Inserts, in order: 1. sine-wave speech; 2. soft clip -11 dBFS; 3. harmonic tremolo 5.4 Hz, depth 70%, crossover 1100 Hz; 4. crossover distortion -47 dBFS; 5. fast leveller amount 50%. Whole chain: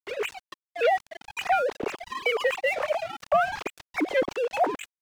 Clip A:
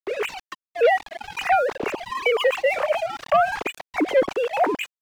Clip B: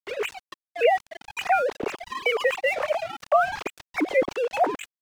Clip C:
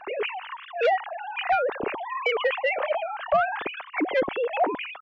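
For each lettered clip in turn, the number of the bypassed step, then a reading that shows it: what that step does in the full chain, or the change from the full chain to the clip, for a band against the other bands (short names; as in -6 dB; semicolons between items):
3, crest factor change -2.5 dB; 2, distortion -13 dB; 4, distortion -20 dB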